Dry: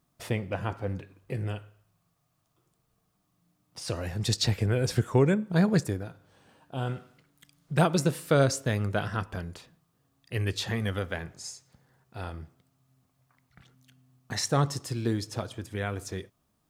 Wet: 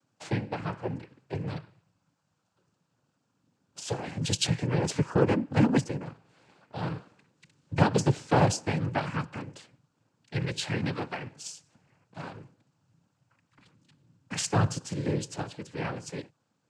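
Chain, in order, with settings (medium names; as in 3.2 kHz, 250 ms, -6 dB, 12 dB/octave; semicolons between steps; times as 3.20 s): noise-vocoded speech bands 8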